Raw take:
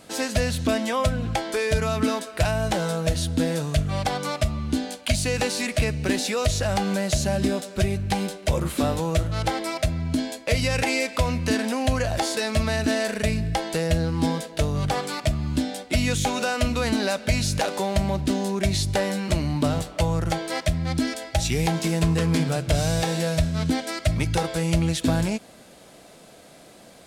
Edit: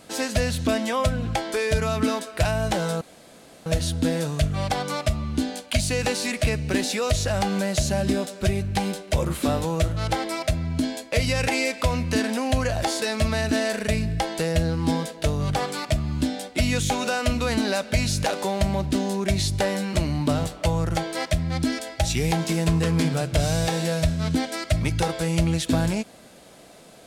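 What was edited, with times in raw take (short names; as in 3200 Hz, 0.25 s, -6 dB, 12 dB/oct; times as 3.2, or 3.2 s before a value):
3.01 insert room tone 0.65 s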